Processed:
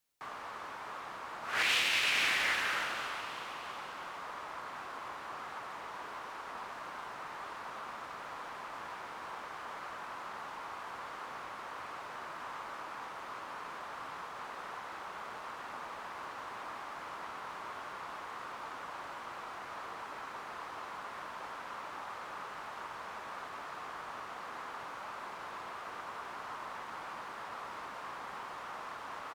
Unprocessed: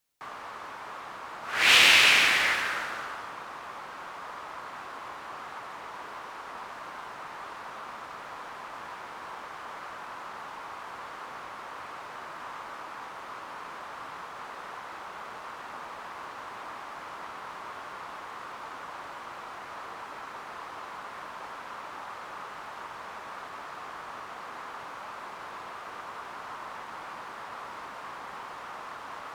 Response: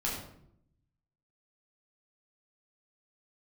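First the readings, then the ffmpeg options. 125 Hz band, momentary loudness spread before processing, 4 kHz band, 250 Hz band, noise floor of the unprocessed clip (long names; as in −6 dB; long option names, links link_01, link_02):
−5.0 dB, 8 LU, −10.5 dB, −5.0 dB, −43 dBFS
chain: -filter_complex "[0:a]asplit=7[link_01][link_02][link_03][link_04][link_05][link_06][link_07];[link_02]adelay=324,afreqshift=65,volume=-18.5dB[link_08];[link_03]adelay=648,afreqshift=130,volume=-22.4dB[link_09];[link_04]adelay=972,afreqshift=195,volume=-26.3dB[link_10];[link_05]adelay=1296,afreqshift=260,volume=-30.1dB[link_11];[link_06]adelay=1620,afreqshift=325,volume=-34dB[link_12];[link_07]adelay=1944,afreqshift=390,volume=-37.9dB[link_13];[link_01][link_08][link_09][link_10][link_11][link_12][link_13]amix=inputs=7:normalize=0,alimiter=limit=-17dB:level=0:latency=1:release=410,volume=-3dB"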